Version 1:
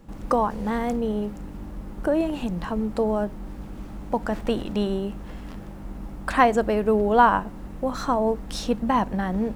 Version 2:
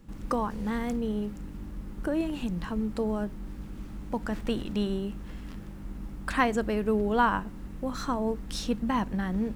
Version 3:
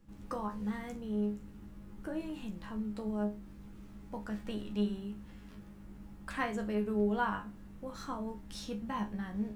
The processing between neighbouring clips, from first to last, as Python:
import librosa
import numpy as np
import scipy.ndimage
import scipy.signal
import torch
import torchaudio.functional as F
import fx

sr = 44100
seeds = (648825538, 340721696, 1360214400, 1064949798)

y1 = fx.peak_eq(x, sr, hz=690.0, db=-8.5, octaves=1.3)
y1 = F.gain(torch.from_numpy(y1), -2.5).numpy()
y2 = fx.resonator_bank(y1, sr, root=37, chord='fifth', decay_s=0.25)